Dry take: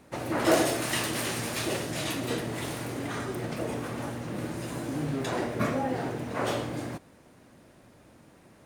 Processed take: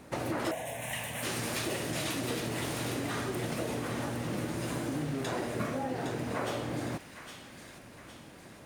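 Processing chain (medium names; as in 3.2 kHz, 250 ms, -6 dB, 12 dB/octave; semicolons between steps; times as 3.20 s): compression 6:1, threshold -35 dBFS, peak gain reduction 17 dB; 0.51–1.23 s: static phaser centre 1.3 kHz, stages 6; feedback echo behind a high-pass 811 ms, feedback 48%, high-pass 1.7 kHz, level -6 dB; trim +4 dB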